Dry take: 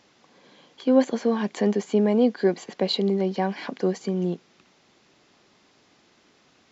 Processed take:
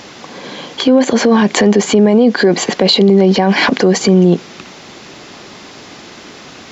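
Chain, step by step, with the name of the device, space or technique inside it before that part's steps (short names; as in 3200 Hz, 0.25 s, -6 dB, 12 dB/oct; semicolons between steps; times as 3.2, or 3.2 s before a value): loud club master (compressor 3:1, threshold -23 dBFS, peak gain reduction 8.5 dB; hard clip -16 dBFS, distortion -35 dB; maximiser +26.5 dB); gain -1 dB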